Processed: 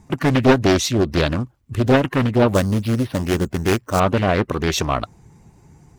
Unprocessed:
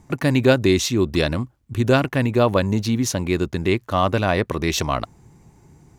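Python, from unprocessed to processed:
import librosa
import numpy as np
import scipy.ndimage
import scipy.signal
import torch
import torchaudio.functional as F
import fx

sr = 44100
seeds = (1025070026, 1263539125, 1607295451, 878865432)

y = fx.spec_quant(x, sr, step_db=15)
y = fx.resample_bad(y, sr, factor=6, down='filtered', up='hold', at=(2.54, 4.0))
y = fx.doppler_dist(y, sr, depth_ms=0.77)
y = y * librosa.db_to_amplitude(2.0)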